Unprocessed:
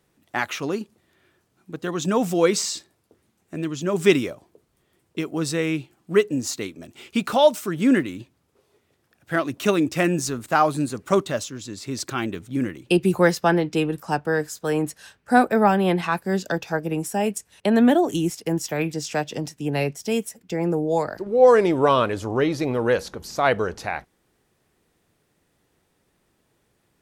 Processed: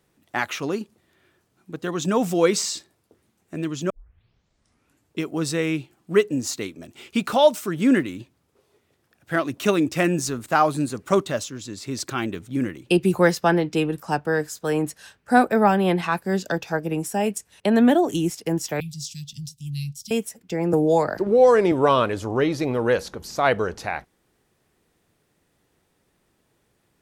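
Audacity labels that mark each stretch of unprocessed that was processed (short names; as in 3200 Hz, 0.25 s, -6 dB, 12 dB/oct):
3.900000	3.900000	tape start 1.30 s
18.800000	20.110000	elliptic band-stop 150–3700 Hz, stop band 50 dB
20.730000	21.720000	three-band squash depth 70%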